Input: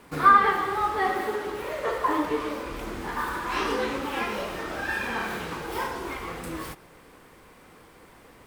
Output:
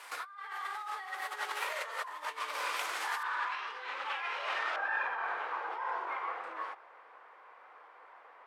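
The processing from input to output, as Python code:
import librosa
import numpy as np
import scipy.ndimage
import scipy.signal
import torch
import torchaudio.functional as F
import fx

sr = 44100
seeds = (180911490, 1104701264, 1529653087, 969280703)

y = fx.lowpass(x, sr, hz=fx.steps((0.0, 12000.0), (3.23, 3100.0), (4.76, 1100.0)), slope=12)
y = fx.over_compress(y, sr, threshold_db=-35.0, ratio=-1.0)
y = scipy.signal.sosfilt(scipy.signal.bessel(4, 1100.0, 'highpass', norm='mag', fs=sr, output='sos'), y)
y = F.gain(torch.from_numpy(y), 2.0).numpy()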